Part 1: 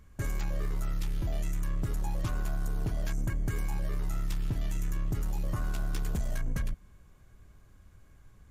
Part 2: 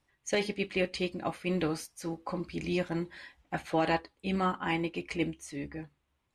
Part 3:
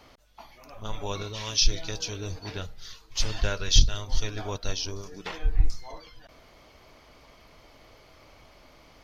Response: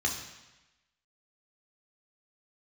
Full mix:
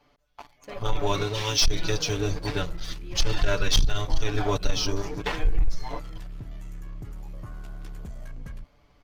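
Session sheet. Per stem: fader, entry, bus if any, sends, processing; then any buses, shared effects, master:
−7.0 dB, 1.90 s, no send, no processing
−13.5 dB, 0.35 s, no send, no processing
−5.5 dB, 0.00 s, no send, comb filter 6.9 ms, depth 92%; leveller curve on the samples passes 3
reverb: not used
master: high-shelf EQ 4,200 Hz −7.5 dB; downward compressor 4 to 1, threshold −16 dBFS, peak gain reduction 5.5 dB

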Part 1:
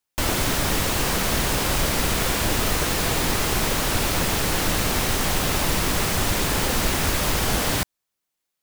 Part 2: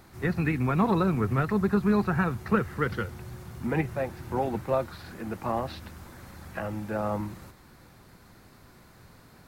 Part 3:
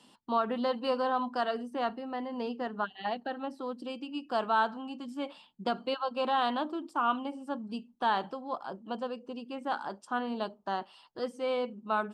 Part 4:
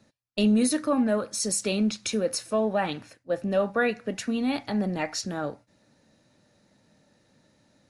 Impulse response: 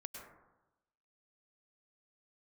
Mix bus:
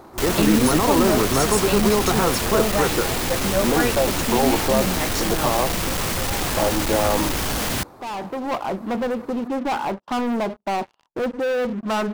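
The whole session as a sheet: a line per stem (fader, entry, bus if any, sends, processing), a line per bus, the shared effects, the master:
+2.0 dB, 0.00 s, no send, hard clipping −23.5 dBFS, distortion −8 dB
+0.5 dB, 0.00 s, no send, flat-topped bell 570 Hz +13.5 dB 2.5 octaves; brickwall limiter −12.5 dBFS, peak gain reduction 11 dB
+0.5 dB, 0.00 s, no send, low-pass filter 1,200 Hz; leveller curve on the samples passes 5; automatic ducking −12 dB, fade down 0.30 s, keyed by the fourth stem
+1.5 dB, 0.00 s, no send, no processing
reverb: not used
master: no processing

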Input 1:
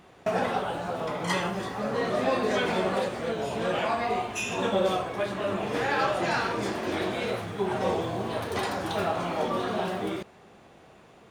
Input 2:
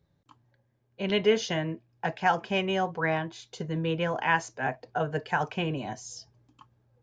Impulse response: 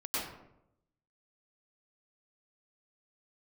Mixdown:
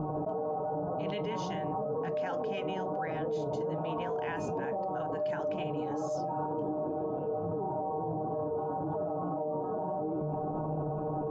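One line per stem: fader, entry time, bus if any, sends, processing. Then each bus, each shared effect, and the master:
+1.5 dB, 0.00 s, no send, inverse Chebyshev low-pass filter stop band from 1,800 Hz, stop band 40 dB; stiff-string resonator 150 Hz, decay 0.26 s, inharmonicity 0.002; envelope flattener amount 100%
−7.0 dB, 0.00 s, no send, no processing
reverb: not used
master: brickwall limiter −26.5 dBFS, peak gain reduction 10.5 dB

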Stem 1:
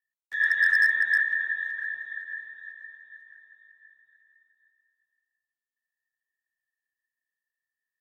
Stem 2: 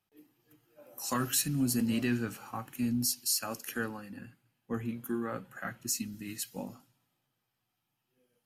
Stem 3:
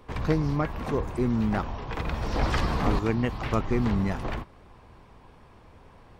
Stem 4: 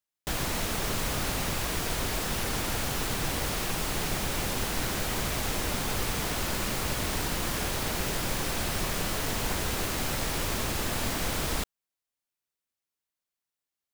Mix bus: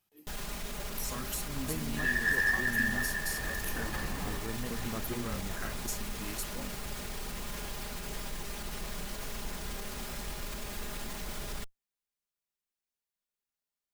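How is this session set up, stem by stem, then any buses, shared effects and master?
−7.5 dB, 1.65 s, no send, no processing
−0.5 dB, 0.00 s, no send, high-shelf EQ 4,800 Hz +8.5 dB; downward compressor, threshold −37 dBFS, peak gain reduction 17.5 dB
−14.5 dB, 1.40 s, no send, no processing
−3.0 dB, 0.00 s, no send, lower of the sound and its delayed copy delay 4.9 ms; brickwall limiter −29 dBFS, peak gain reduction 11 dB; low-shelf EQ 80 Hz +9 dB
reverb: not used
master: no processing

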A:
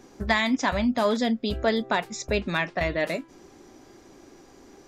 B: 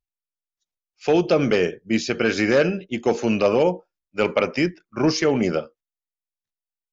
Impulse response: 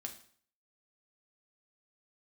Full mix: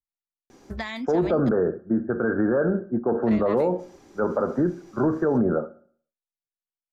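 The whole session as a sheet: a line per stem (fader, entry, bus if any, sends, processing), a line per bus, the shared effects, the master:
−1.5 dB, 0.50 s, muted 0:01.49–0:03.23, no send, downward compressor 4 to 1, threshold −29 dBFS, peak gain reduction 10 dB
+1.5 dB, 0.00 s, send −5 dB, Butterworth low-pass 1,600 Hz 96 dB per octave; multiband upward and downward expander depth 40%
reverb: on, RT60 0.55 s, pre-delay 4 ms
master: brickwall limiter −14 dBFS, peak gain reduction 11 dB

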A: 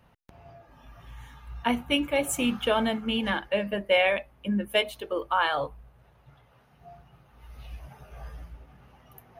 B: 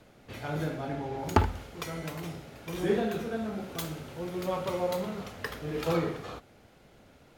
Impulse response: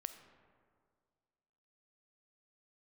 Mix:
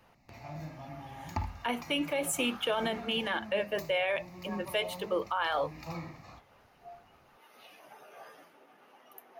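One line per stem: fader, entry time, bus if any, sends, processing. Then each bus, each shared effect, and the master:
0.0 dB, 0.00 s, no send, high-pass filter 290 Hz 24 dB per octave
−7.0 dB, 0.00 s, no send, phaser with its sweep stopped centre 2,200 Hz, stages 8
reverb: not used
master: brickwall limiter −21 dBFS, peak gain reduction 10 dB

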